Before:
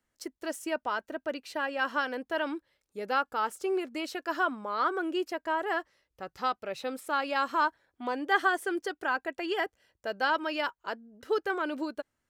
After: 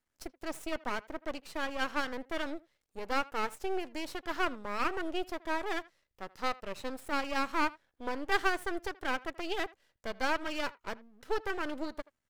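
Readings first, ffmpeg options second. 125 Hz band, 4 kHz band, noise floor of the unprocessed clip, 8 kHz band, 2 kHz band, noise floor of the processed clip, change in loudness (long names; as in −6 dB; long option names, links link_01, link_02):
can't be measured, −1.5 dB, −83 dBFS, −1.0 dB, −4.0 dB, −83 dBFS, −4.0 dB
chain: -filter_complex "[0:a]aeval=exprs='max(val(0),0)':channel_layout=same,asplit=2[link_01][link_02];[link_02]adelay=80,highpass=300,lowpass=3400,asoftclip=type=hard:threshold=-22dB,volume=-21dB[link_03];[link_01][link_03]amix=inputs=2:normalize=0"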